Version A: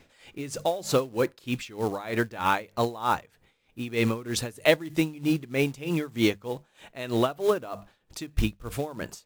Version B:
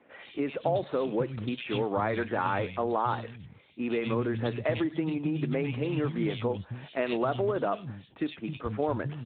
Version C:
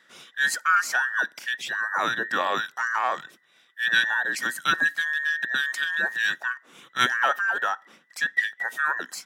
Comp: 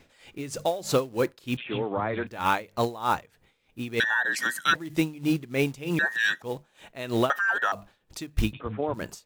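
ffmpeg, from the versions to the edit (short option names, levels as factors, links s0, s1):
-filter_complex "[1:a]asplit=2[s0][s1];[2:a]asplit=3[s2][s3][s4];[0:a]asplit=6[s5][s6][s7][s8][s9][s10];[s5]atrim=end=1.572[s11];[s0]atrim=start=1.568:end=2.272[s12];[s6]atrim=start=2.268:end=4.002[s13];[s2]atrim=start=3.998:end=4.752[s14];[s7]atrim=start=4.748:end=5.992[s15];[s3]atrim=start=5.988:end=6.422[s16];[s8]atrim=start=6.418:end=7.302[s17];[s4]atrim=start=7.298:end=7.722[s18];[s9]atrim=start=7.718:end=8.532[s19];[s1]atrim=start=8.528:end=8.942[s20];[s10]atrim=start=8.938[s21];[s11][s12]acrossfade=d=0.004:c1=hsin:c2=hsin[s22];[s22][s13]acrossfade=d=0.004:c1=hsin:c2=hsin[s23];[s23][s14]acrossfade=d=0.004:c1=hsin:c2=hsin[s24];[s24][s15]acrossfade=d=0.004:c1=hsin:c2=hsin[s25];[s25][s16]acrossfade=d=0.004:c1=hsin:c2=hsin[s26];[s26][s17]acrossfade=d=0.004:c1=hsin:c2=hsin[s27];[s27][s18]acrossfade=d=0.004:c1=hsin:c2=hsin[s28];[s28][s19]acrossfade=d=0.004:c1=hsin:c2=hsin[s29];[s29][s20]acrossfade=d=0.004:c1=hsin:c2=hsin[s30];[s30][s21]acrossfade=d=0.004:c1=hsin:c2=hsin"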